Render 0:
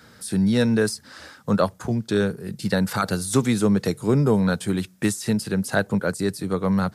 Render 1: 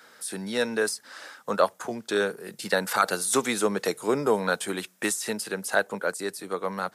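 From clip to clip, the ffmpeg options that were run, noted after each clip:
-af "highpass=490,equalizer=f=4600:t=o:w=0.56:g=-3.5,dynaudnorm=f=200:g=17:m=1.41"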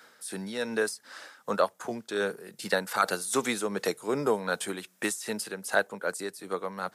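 -af "tremolo=f=2.6:d=0.47,volume=0.841"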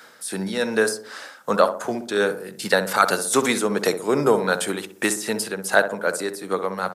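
-filter_complex "[0:a]asplit=2[s0][s1];[s1]adelay=63,lowpass=f=1000:p=1,volume=0.398,asplit=2[s2][s3];[s3]adelay=63,lowpass=f=1000:p=1,volume=0.52,asplit=2[s4][s5];[s5]adelay=63,lowpass=f=1000:p=1,volume=0.52,asplit=2[s6][s7];[s7]adelay=63,lowpass=f=1000:p=1,volume=0.52,asplit=2[s8][s9];[s9]adelay=63,lowpass=f=1000:p=1,volume=0.52,asplit=2[s10][s11];[s11]adelay=63,lowpass=f=1000:p=1,volume=0.52[s12];[s0][s2][s4][s6][s8][s10][s12]amix=inputs=7:normalize=0,volume=2.51"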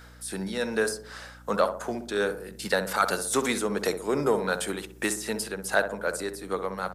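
-filter_complex "[0:a]aeval=exprs='val(0)+0.00631*(sin(2*PI*60*n/s)+sin(2*PI*2*60*n/s)/2+sin(2*PI*3*60*n/s)/3+sin(2*PI*4*60*n/s)/4+sin(2*PI*5*60*n/s)/5)':c=same,asplit=2[s0][s1];[s1]asoftclip=type=tanh:threshold=0.158,volume=0.376[s2];[s0][s2]amix=inputs=2:normalize=0,volume=0.398"

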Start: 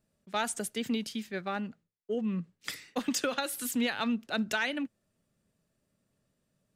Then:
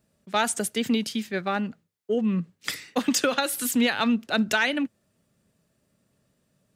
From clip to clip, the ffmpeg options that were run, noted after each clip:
-af "highpass=44,volume=2.37"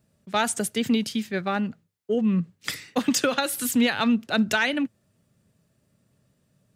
-af "equalizer=f=110:w=1.1:g=7"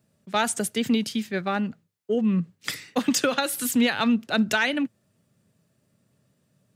-af "highpass=90"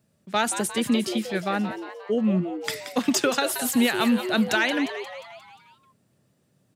-filter_complex "[0:a]asplit=7[s0][s1][s2][s3][s4][s5][s6];[s1]adelay=177,afreqshift=130,volume=0.316[s7];[s2]adelay=354,afreqshift=260,volume=0.17[s8];[s3]adelay=531,afreqshift=390,volume=0.0923[s9];[s4]adelay=708,afreqshift=520,volume=0.0495[s10];[s5]adelay=885,afreqshift=650,volume=0.0269[s11];[s6]adelay=1062,afreqshift=780,volume=0.0145[s12];[s0][s7][s8][s9][s10][s11][s12]amix=inputs=7:normalize=0"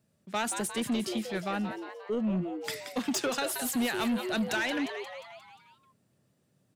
-af "asoftclip=type=tanh:threshold=0.106,volume=0.596"

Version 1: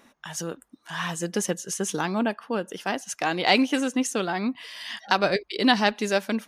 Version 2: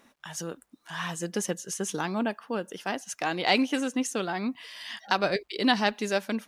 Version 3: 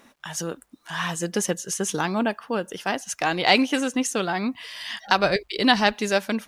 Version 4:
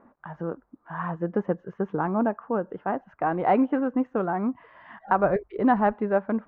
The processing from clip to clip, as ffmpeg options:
-af "acrusher=bits=11:mix=0:aa=0.000001,volume=0.668"
-af "asubboost=boost=4:cutoff=110,volume=2"
-af "lowpass=f=1300:w=0.5412,lowpass=f=1300:w=1.3066"

